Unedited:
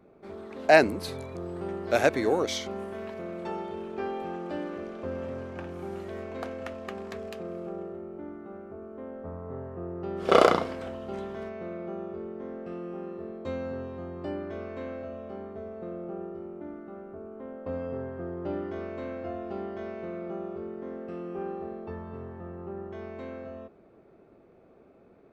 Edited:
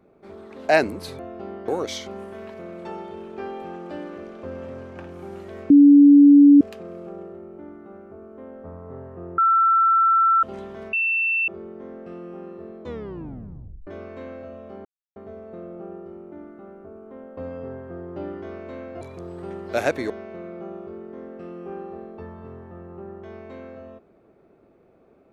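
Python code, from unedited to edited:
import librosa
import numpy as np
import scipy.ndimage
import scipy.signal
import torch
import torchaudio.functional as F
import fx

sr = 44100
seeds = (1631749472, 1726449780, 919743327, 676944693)

y = fx.edit(x, sr, fx.swap(start_s=1.19, length_s=1.09, other_s=19.3, other_length_s=0.49),
    fx.bleep(start_s=6.3, length_s=0.91, hz=286.0, db=-7.0),
    fx.bleep(start_s=9.98, length_s=1.05, hz=1340.0, db=-14.0),
    fx.bleep(start_s=11.53, length_s=0.55, hz=2680.0, db=-19.0),
    fx.tape_stop(start_s=13.41, length_s=1.06),
    fx.insert_silence(at_s=15.45, length_s=0.31), tone=tone)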